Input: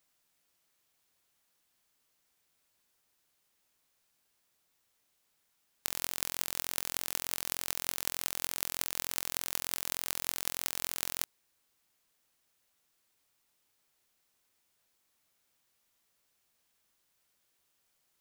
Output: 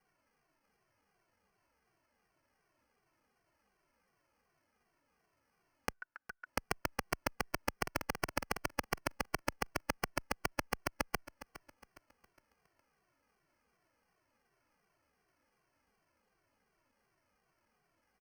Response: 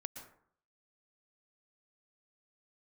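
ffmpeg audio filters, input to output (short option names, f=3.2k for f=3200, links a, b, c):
-filter_complex "[0:a]asettb=1/sr,asplit=3[a][b][c];[a]atrim=end=7.784[d];[b]atrim=start=7.78:end=8.62,asetpts=PTS-STARTPTS,afade=t=in:d=0.004:c=qsin,afade=t=out:st=0.836:d=0.004:c=qsin,aecho=1:1:5:0.33,atrim=end_sample=37044[e];[c]atrim=start=8.616[f];[d][e]acrossfade=d=0.004:c1=hsin:c2=qsin[g];[g][f]acrossfade=d=0.004:c1=qsin:c2=hsin,asplit=2[h][i];[i]alimiter=limit=-12dB:level=0:latency=1:release=261,volume=0.5dB[j];[h][j]amix=inputs=2:normalize=0,acrusher=samples=12:mix=1:aa=0.000001,asplit=3[k][l][m];[k]afade=t=out:st=5.92:d=0.02[n];[l]bandpass=f=1.5k:t=q:w=15:csg=0,afade=t=in:st=5.92:d=0.02,afade=t=out:st=6.45:d=0.02[o];[m]afade=t=in:st=6.45:d=0.02[p];[n][o][p]amix=inputs=3:normalize=0,asplit=2[q][r];[r]aecho=0:1:412|824|1236|1648:0.158|0.0634|0.0254|0.0101[s];[q][s]amix=inputs=2:normalize=0,asplit=2[t][u];[u]adelay=2.1,afreqshift=-2.7[v];[t][v]amix=inputs=2:normalize=1,volume=-6dB"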